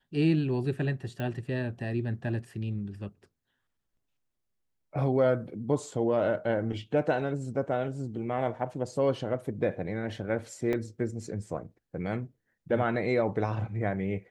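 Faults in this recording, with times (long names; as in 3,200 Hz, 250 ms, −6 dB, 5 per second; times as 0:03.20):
0:01.20: click −23 dBFS
0:10.73: drop-out 2.8 ms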